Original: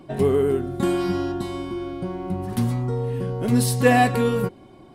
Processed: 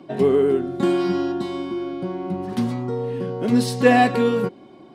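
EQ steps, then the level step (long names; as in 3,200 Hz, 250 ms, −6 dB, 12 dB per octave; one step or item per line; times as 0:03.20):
three-way crossover with the lows and the highs turned down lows −21 dB, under 170 Hz, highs −19 dB, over 5,800 Hz
low-shelf EQ 420 Hz +5.5 dB
high-shelf EQ 5,300 Hz +8 dB
0.0 dB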